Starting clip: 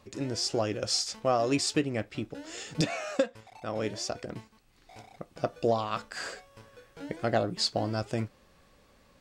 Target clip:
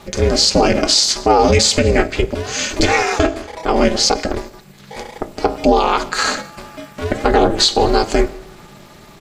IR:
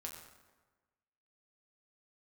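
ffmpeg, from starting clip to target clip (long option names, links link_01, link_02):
-filter_complex "[0:a]bandreject=frequency=60:width_type=h:width=6,bandreject=frequency=120:width_type=h:width=6,bandreject=frequency=180:width_type=h:width=6,bandreject=frequency=240:width_type=h:width=6,bandreject=frequency=300:width_type=h:width=6,bandreject=frequency=360:width_type=h:width=6,bandreject=frequency=420:width_type=h:width=6,bandreject=frequency=480:width_type=h:width=6,bandreject=frequency=540:width_type=h:width=6,asplit=2[link_01][link_02];[link_02]adelay=169.1,volume=-28dB,highshelf=frequency=4000:gain=-3.8[link_03];[link_01][link_03]amix=inputs=2:normalize=0,asplit=2[link_04][link_05];[1:a]atrim=start_sample=2205,highshelf=frequency=3600:gain=8.5[link_06];[link_05][link_06]afir=irnorm=-1:irlink=0,volume=-11dB[link_07];[link_04][link_07]amix=inputs=2:normalize=0,asetrate=40440,aresample=44100,atempo=1.09051,aecho=1:1:4.8:0.87,aeval=exprs='val(0)*sin(2*PI*170*n/s)':channel_layout=same,alimiter=level_in=20dB:limit=-1dB:release=50:level=0:latency=1,volume=-1dB"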